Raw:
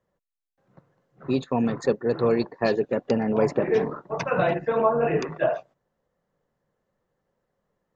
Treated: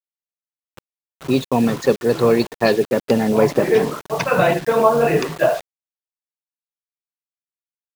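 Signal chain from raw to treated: bit crusher 7-bit; dynamic bell 3.5 kHz, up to +4 dB, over -41 dBFS, Q 0.83; trim +6.5 dB

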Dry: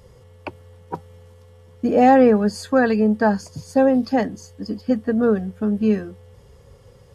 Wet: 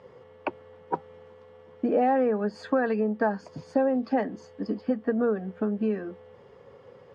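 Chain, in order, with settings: compression 6:1, threshold -23 dBFS, peak gain reduction 13 dB; band-pass 260–2200 Hz; trim +3 dB

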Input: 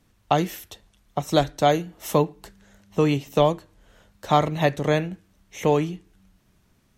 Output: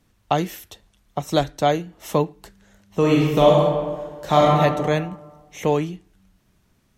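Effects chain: 1.61–2.20 s: treble shelf 8.3 kHz -6.5 dB; 2.99–4.59 s: reverb throw, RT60 1.5 s, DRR -4 dB

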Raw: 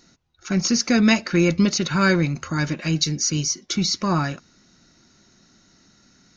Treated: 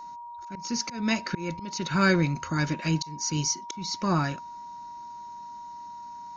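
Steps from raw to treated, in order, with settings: slow attack 387 ms; whistle 950 Hz -35 dBFS; trim -3.5 dB

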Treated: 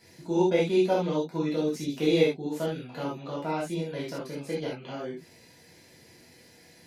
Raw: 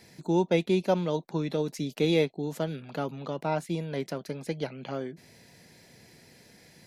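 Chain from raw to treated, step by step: gated-style reverb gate 100 ms flat, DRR -7 dB; trim -7 dB

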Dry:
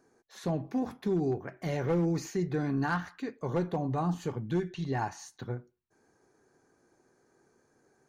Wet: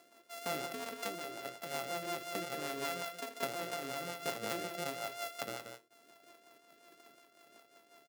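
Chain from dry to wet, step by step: sorted samples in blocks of 64 samples; high-pass 350 Hz 12 dB/octave; treble shelf 7.2 kHz +4.5 dB; peak limiter -24 dBFS, peak gain reduction 11 dB; compression, threshold -41 dBFS, peak gain reduction 8 dB; rotary cabinet horn 5.5 Hz; on a send: multi-tap echo 82/180/182 ms -17/-8.5/-19 dB; on the sum: random flutter of the level, depth 65%; trim +12 dB

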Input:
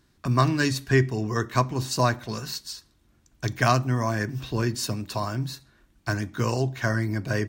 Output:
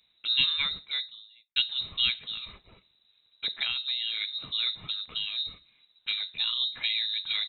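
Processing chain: 3.47–4.22 s: compression, threshold -22 dBFS, peak gain reduction 7.5 dB; frequency inversion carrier 3.9 kHz; 0.60–1.56 s: fade out quadratic; trim -5 dB

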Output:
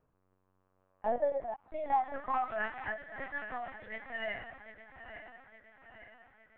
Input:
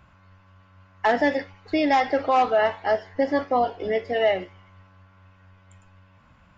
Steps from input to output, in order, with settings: backward echo that repeats 432 ms, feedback 72%, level -10.5 dB; band-pass sweep 370 Hz -> 1.7 kHz, 0.54–2.81 s; LPC vocoder at 8 kHz pitch kept; trim -6 dB

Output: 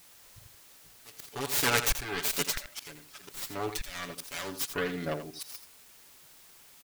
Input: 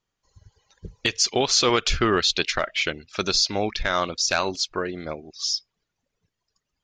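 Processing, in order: self-modulated delay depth 0.53 ms; comb 7 ms, depth 79%; slow attack 777 ms; added noise white -53 dBFS; on a send: delay 84 ms -10.5 dB; on the sum: trim -3 dB

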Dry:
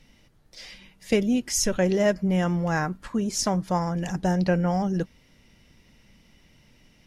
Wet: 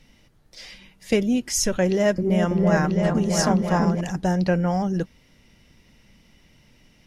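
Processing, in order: 1.85–4.01 s: delay with an opening low-pass 330 ms, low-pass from 400 Hz, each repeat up 2 oct, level 0 dB; trim +1.5 dB

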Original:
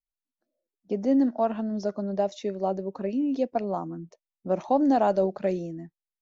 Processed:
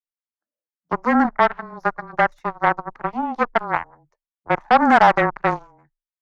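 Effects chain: Chebyshev shaper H 4 -19 dB, 5 -32 dB, 7 -15 dB, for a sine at -12.5 dBFS; frequency shift -21 Hz; high-order bell 1.3 kHz +12.5 dB; trim +2 dB

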